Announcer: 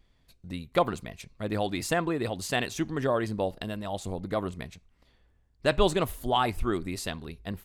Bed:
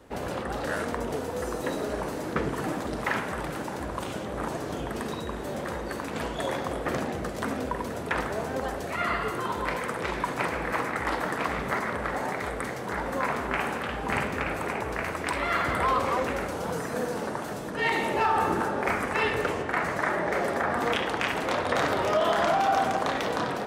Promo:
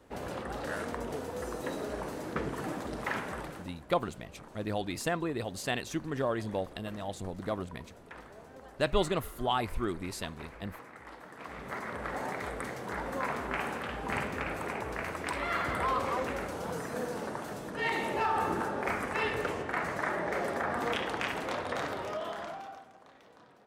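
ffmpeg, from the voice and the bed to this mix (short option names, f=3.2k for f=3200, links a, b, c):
-filter_complex "[0:a]adelay=3150,volume=-4.5dB[a];[1:a]volume=8.5dB,afade=t=out:st=3.35:d=0.39:silence=0.199526,afade=t=in:st=11.32:d=0.89:silence=0.188365,afade=t=out:st=21.2:d=1.65:silence=0.0630957[b];[a][b]amix=inputs=2:normalize=0"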